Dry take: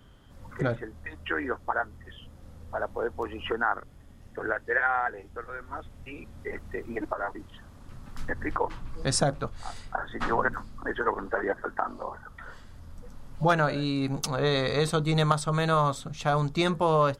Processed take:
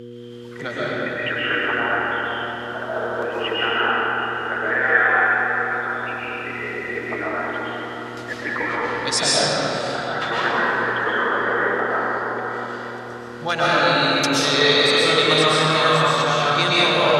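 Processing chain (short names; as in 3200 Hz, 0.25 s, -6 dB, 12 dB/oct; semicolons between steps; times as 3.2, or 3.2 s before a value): low shelf 130 Hz -10.5 dB; digital reverb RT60 4.6 s, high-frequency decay 0.5×, pre-delay 85 ms, DRR -9.5 dB; buzz 120 Hz, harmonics 4, -33 dBFS -1 dB/oct; weighting filter D; gain -2 dB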